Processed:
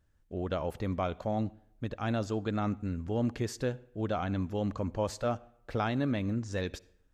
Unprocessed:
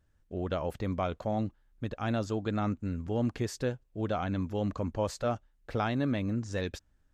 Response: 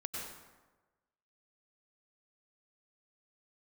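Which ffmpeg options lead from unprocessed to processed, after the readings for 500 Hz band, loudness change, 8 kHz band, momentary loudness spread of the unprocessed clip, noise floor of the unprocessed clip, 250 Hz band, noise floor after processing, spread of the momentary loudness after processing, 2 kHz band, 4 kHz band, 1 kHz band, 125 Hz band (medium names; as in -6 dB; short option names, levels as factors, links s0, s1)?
-0.5 dB, -0.5 dB, -0.5 dB, 8 LU, -69 dBFS, -0.5 dB, -67 dBFS, 8 LU, -0.5 dB, -0.5 dB, -0.5 dB, -0.5 dB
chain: -filter_complex "[0:a]asplit=2[s0][s1];[1:a]atrim=start_sample=2205,asetrate=74970,aresample=44100[s2];[s1][s2]afir=irnorm=-1:irlink=0,volume=0.158[s3];[s0][s3]amix=inputs=2:normalize=0,volume=0.891"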